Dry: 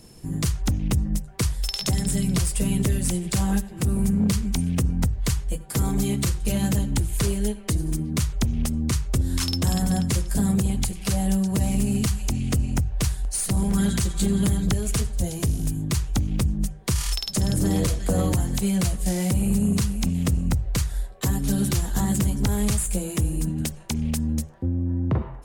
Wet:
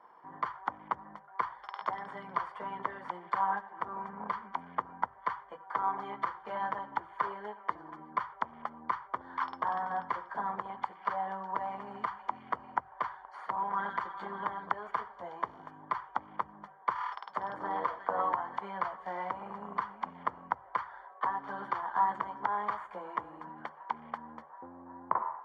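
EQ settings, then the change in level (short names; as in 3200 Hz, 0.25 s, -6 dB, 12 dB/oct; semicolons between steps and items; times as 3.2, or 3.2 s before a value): polynomial smoothing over 41 samples; resonant high-pass 990 Hz, resonance Q 5.1; air absorption 310 m; 0.0 dB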